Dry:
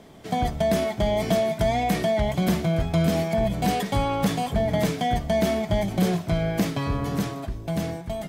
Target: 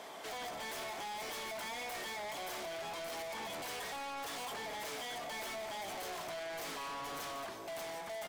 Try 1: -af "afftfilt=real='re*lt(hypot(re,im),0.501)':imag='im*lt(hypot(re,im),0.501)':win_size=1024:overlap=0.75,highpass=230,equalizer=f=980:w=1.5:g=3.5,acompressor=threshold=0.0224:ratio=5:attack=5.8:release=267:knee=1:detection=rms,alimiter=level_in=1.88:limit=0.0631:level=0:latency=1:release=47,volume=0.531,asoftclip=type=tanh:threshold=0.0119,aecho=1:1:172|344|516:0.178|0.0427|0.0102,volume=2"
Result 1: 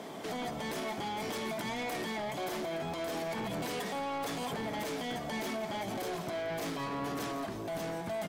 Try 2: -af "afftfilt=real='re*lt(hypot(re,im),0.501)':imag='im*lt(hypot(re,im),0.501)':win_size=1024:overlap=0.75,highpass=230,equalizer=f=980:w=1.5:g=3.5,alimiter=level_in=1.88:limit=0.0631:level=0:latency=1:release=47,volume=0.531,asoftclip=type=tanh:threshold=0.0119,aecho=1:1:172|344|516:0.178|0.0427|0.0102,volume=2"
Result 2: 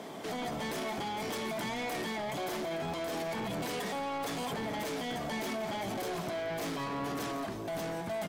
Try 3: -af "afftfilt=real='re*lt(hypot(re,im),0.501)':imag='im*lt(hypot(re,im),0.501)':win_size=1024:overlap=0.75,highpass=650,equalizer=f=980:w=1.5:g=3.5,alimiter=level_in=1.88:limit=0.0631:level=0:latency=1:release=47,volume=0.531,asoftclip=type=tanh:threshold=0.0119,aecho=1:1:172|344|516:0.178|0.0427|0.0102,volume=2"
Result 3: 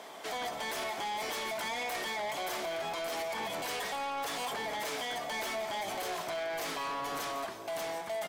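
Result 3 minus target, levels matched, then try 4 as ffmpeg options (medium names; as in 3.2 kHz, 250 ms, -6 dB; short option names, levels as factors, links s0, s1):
saturation: distortion -6 dB
-af "afftfilt=real='re*lt(hypot(re,im),0.501)':imag='im*lt(hypot(re,im),0.501)':win_size=1024:overlap=0.75,highpass=650,equalizer=f=980:w=1.5:g=3.5,alimiter=level_in=1.88:limit=0.0631:level=0:latency=1:release=47,volume=0.531,asoftclip=type=tanh:threshold=0.00447,aecho=1:1:172|344|516:0.178|0.0427|0.0102,volume=2"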